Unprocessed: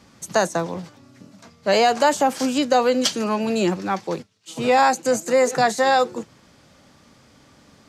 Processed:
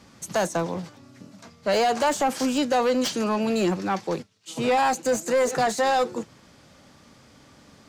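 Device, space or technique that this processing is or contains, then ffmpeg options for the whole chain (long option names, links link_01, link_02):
saturation between pre-emphasis and de-emphasis: -af "highshelf=frequency=3600:gain=12,asoftclip=type=tanh:threshold=-16dB,highshelf=frequency=3600:gain=-12"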